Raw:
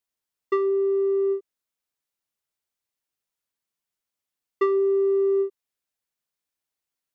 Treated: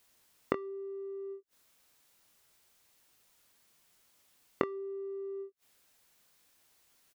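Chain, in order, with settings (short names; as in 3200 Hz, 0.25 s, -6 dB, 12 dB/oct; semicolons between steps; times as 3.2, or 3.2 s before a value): flipped gate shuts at -30 dBFS, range -39 dB; doubler 23 ms -10.5 dB; gain +18 dB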